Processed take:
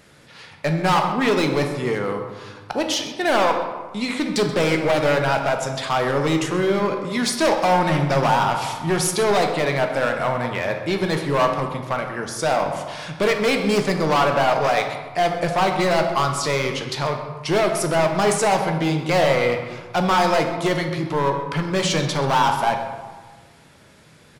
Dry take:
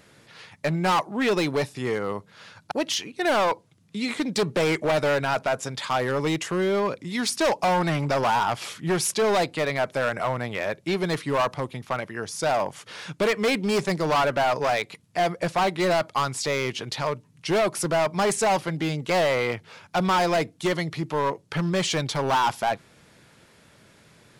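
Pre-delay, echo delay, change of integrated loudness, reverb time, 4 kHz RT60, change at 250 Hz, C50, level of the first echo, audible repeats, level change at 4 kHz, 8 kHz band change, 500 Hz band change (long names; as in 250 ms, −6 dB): 11 ms, 130 ms, +4.0 dB, 1.4 s, 0.75 s, +4.5 dB, 6.0 dB, −15.0 dB, 1, +3.5 dB, +3.0 dB, +4.0 dB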